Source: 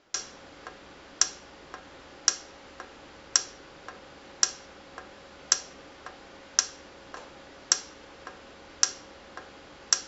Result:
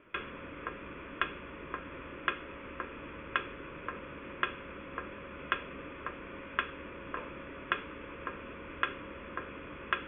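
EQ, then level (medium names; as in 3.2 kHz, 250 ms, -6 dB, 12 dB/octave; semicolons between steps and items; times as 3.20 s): rippled Chebyshev low-pass 3.5 kHz, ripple 9 dB; treble shelf 2 kHz -9.5 dB; static phaser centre 1.9 kHz, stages 4; +16.0 dB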